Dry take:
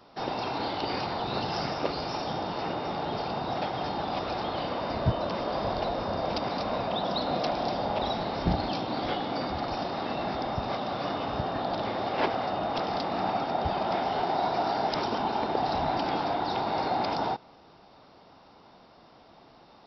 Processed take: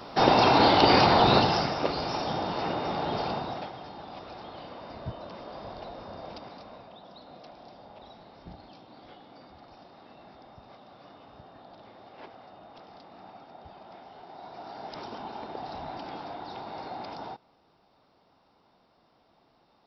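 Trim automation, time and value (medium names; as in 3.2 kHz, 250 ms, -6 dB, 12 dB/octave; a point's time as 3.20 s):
1.30 s +12 dB
1.70 s +1.5 dB
3.30 s +1.5 dB
3.82 s -11.5 dB
6.28 s -11.5 dB
6.99 s -20 dB
14.22 s -20 dB
15.03 s -10.5 dB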